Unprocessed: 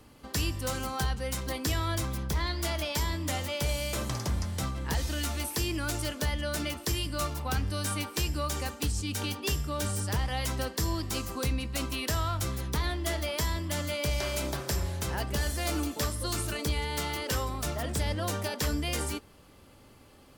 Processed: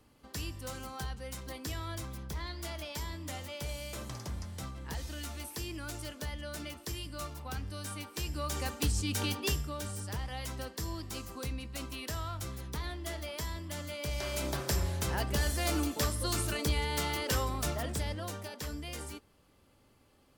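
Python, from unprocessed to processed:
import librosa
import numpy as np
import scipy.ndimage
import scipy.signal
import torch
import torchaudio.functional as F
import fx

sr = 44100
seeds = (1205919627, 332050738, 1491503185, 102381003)

y = fx.gain(x, sr, db=fx.line((8.07, -9.0), (8.77, 0.0), (9.42, 0.0), (9.84, -8.0), (13.96, -8.0), (14.61, -0.5), (17.66, -0.5), (18.45, -10.0)))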